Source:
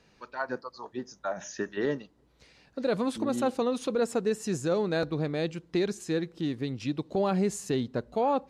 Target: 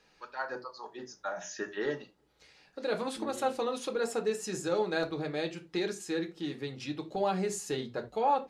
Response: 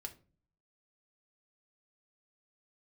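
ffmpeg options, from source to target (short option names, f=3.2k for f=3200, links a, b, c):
-filter_complex "[0:a]lowshelf=f=330:g=-11.5[a];[1:a]atrim=start_sample=2205,atrim=end_sample=4410[b];[a][b]afir=irnorm=-1:irlink=0,volume=4dB"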